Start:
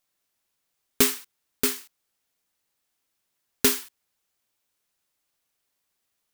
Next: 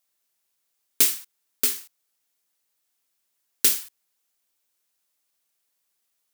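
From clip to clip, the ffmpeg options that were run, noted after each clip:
ffmpeg -i in.wav -filter_complex "[0:a]highpass=frequency=200:poles=1,highshelf=frequency=4700:gain=6.5,acrossover=split=1900[link_01][link_02];[link_01]acompressor=threshold=-32dB:ratio=6[link_03];[link_03][link_02]amix=inputs=2:normalize=0,volume=-2.5dB" out.wav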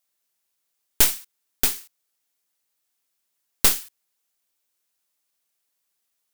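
ffmpeg -i in.wav -af "aeval=exprs='0.891*(cos(1*acos(clip(val(0)/0.891,-1,1)))-cos(1*PI/2))+0.251*(cos(6*acos(clip(val(0)/0.891,-1,1)))-cos(6*PI/2))':channel_layout=same,volume=-1dB" out.wav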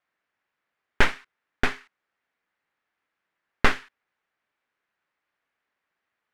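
ffmpeg -i in.wav -af "lowpass=frequency=1800:width_type=q:width=1.8,volume=4.5dB" out.wav

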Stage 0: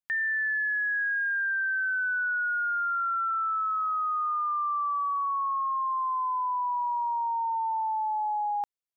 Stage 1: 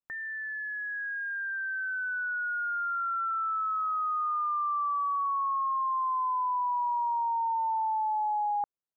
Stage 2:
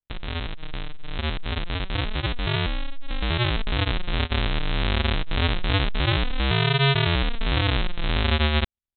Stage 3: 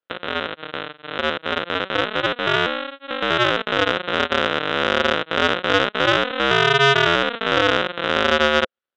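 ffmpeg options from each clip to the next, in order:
ffmpeg -i in.wav -af "lowpass=frequency=1400:width=0.5412,lowpass=frequency=1400:width=1.3066" out.wav
ffmpeg -i in.wav -af "aresample=8000,acrusher=samples=41:mix=1:aa=0.000001:lfo=1:lforange=24.6:lforate=0.26,aresample=44100,crystalizer=i=8.5:c=0,volume=6.5dB" out.wav
ffmpeg -i in.wav -af "highpass=310,equalizer=frequency=520:width_type=q:width=4:gain=8,equalizer=frequency=860:width_type=q:width=4:gain=-3,equalizer=frequency=1400:width_type=q:width=4:gain=8,equalizer=frequency=2300:width_type=q:width=4:gain=-4,lowpass=frequency=3600:width=0.5412,lowpass=frequency=3600:width=1.3066,acontrast=82,volume=2dB" out.wav

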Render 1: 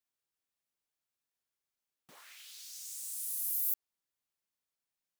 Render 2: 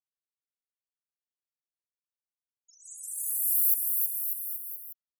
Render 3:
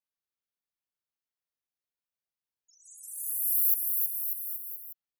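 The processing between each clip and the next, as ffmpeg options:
ffmpeg -i in.wav -filter_complex "[0:a]aecho=1:1:1.5:0.66,afftfilt=real='re*gte(hypot(re,im),0.0178)':imag='im*gte(hypot(re,im),0.0178)':win_size=1024:overlap=0.75,asplit=2[link_01][link_02];[link_02]aecho=0:1:320|592|823.2|1020|1187:0.631|0.398|0.251|0.158|0.1[link_03];[link_01][link_03]amix=inputs=2:normalize=0,volume=7.5dB" out.wav
ffmpeg -i in.wav -af "equalizer=frequency=8000:width=1.7:gain=-7.5" out.wav

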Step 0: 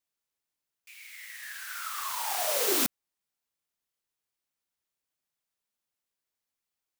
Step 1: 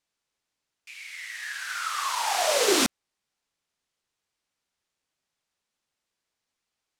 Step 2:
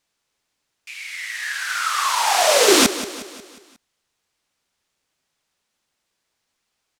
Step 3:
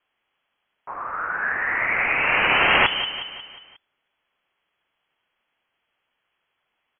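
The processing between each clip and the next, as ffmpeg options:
ffmpeg -i in.wav -af "lowpass=7400,volume=7.5dB" out.wav
ffmpeg -i in.wav -af "aecho=1:1:180|360|540|720|900:0.2|0.0998|0.0499|0.0249|0.0125,volume=8dB" out.wav
ffmpeg -i in.wav -af "afftfilt=real='re*lt(hypot(re,im),0.447)':imag='im*lt(hypot(re,im),0.447)':win_size=1024:overlap=0.75,lowpass=frequency=2900:width_type=q:width=0.5098,lowpass=frequency=2900:width_type=q:width=0.6013,lowpass=frequency=2900:width_type=q:width=0.9,lowpass=frequency=2900:width_type=q:width=2.563,afreqshift=-3400,volume=4dB" out.wav

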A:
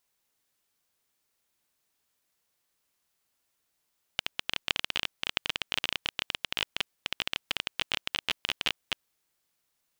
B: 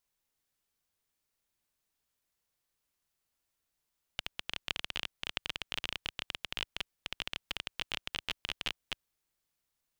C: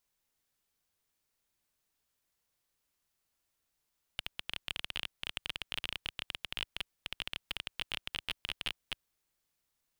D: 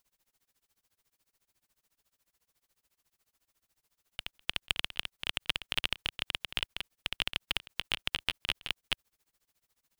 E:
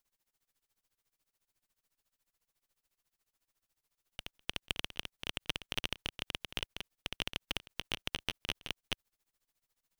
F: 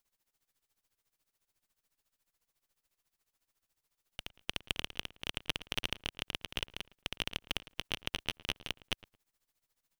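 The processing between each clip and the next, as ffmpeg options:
ffmpeg -i in.wav -af "lowshelf=frequency=90:gain=11,volume=-6.5dB" out.wav
ffmpeg -i in.wav -af "asoftclip=type=tanh:threshold=-20dB,volume=1.5dB" out.wav
ffmpeg -i in.wav -af "tremolo=f=14:d=0.98,volume=9dB" out.wav
ffmpeg -i in.wav -af "aeval=exprs='if(lt(val(0),0),0.447*val(0),val(0))':channel_layout=same,volume=-3.5dB" out.wav
ffmpeg -i in.wav -filter_complex "[0:a]asplit=2[link_01][link_02];[link_02]adelay=111,lowpass=frequency=1700:poles=1,volume=-18dB,asplit=2[link_03][link_04];[link_04]adelay=111,lowpass=frequency=1700:poles=1,volume=0.23[link_05];[link_01][link_03][link_05]amix=inputs=3:normalize=0,volume=1dB" out.wav

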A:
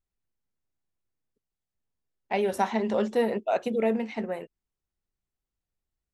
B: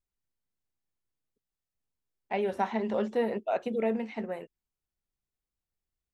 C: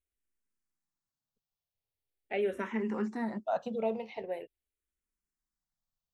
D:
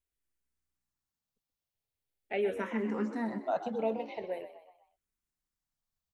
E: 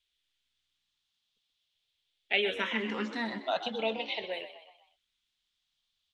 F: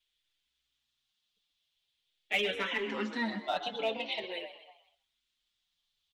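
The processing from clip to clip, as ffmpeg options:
ffmpeg -i in.wav -filter_complex "[0:a]acrossover=split=3600[link_01][link_02];[link_02]acompressor=threshold=-57dB:ratio=4:attack=1:release=60[link_03];[link_01][link_03]amix=inputs=2:normalize=0,volume=-3.5dB" out.wav
ffmpeg -i in.wav -filter_complex "[0:a]asplit=2[link_01][link_02];[link_02]afreqshift=-0.43[link_03];[link_01][link_03]amix=inputs=2:normalize=1" out.wav
ffmpeg -i in.wav -filter_complex "[0:a]asplit=5[link_01][link_02][link_03][link_04][link_05];[link_02]adelay=126,afreqshift=61,volume=-12dB[link_06];[link_03]adelay=252,afreqshift=122,volume=-19.1dB[link_07];[link_04]adelay=378,afreqshift=183,volume=-26.3dB[link_08];[link_05]adelay=504,afreqshift=244,volume=-33.4dB[link_09];[link_01][link_06][link_07][link_08][link_09]amix=inputs=5:normalize=0" out.wav
ffmpeg -i in.wav -af "lowpass=frequency=3400:width_type=q:width=4.7,crystalizer=i=9:c=0,volume=-3dB" out.wav
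ffmpeg -i in.wav -filter_complex "[0:a]asplit=2[link_01][link_02];[link_02]aeval=exprs='0.0596*(abs(mod(val(0)/0.0596+3,4)-2)-1)':channel_layout=same,volume=-10dB[link_03];[link_01][link_03]amix=inputs=2:normalize=0,asplit=2[link_04][link_05];[link_05]adelay=190,highpass=300,lowpass=3400,asoftclip=type=hard:threshold=-20dB,volume=-23dB[link_06];[link_04][link_06]amix=inputs=2:normalize=0,asplit=2[link_07][link_08];[link_08]adelay=5.9,afreqshift=-0.93[link_09];[link_07][link_09]amix=inputs=2:normalize=1" out.wav

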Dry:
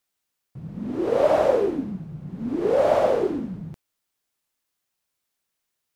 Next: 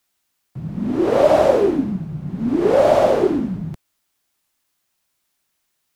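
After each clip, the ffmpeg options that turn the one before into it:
ffmpeg -i in.wav -filter_complex "[0:a]acrossover=split=130|660|2700[link_01][link_02][link_03][link_04];[link_03]alimiter=limit=-21dB:level=0:latency=1:release=207[link_05];[link_01][link_02][link_05][link_04]amix=inputs=4:normalize=0,equalizer=frequency=480:width_type=o:width=0.22:gain=-7,volume=8dB" out.wav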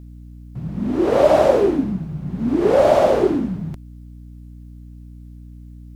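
ffmpeg -i in.wav -af "aeval=exprs='val(0)+0.0141*(sin(2*PI*60*n/s)+sin(2*PI*2*60*n/s)/2+sin(2*PI*3*60*n/s)/3+sin(2*PI*4*60*n/s)/4+sin(2*PI*5*60*n/s)/5)':channel_layout=same" out.wav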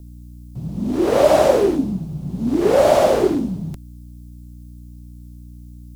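ffmpeg -i in.wav -filter_complex "[0:a]highshelf=frequency=4700:gain=11,acrossover=split=280|1100|2700[link_01][link_02][link_03][link_04];[link_03]aeval=exprs='val(0)*gte(abs(val(0)),0.00841)':channel_layout=same[link_05];[link_01][link_02][link_05][link_04]amix=inputs=4:normalize=0" out.wav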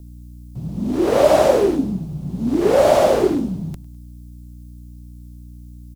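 ffmpeg -i in.wav -af "aecho=1:1:102|204|306:0.075|0.0322|0.0139" out.wav

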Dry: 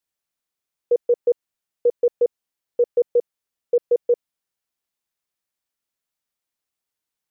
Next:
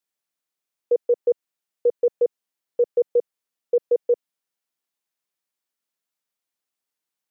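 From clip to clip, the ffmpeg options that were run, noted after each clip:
ffmpeg -i in.wav -af "highpass=160,volume=-1dB" out.wav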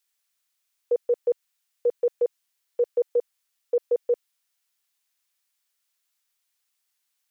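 ffmpeg -i in.wav -af "tiltshelf=frequency=740:gain=-9.5" out.wav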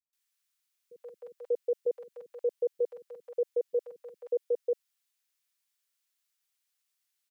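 ffmpeg -i in.wav -filter_complex "[0:a]acrossover=split=230|790[link_01][link_02][link_03];[link_03]adelay=130[link_04];[link_02]adelay=590[link_05];[link_01][link_05][link_04]amix=inputs=3:normalize=0,volume=-4.5dB" out.wav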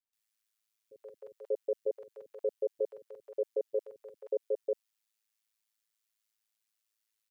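ffmpeg -i in.wav -af "aeval=exprs='val(0)*sin(2*PI*54*n/s)':channel_layout=same" out.wav

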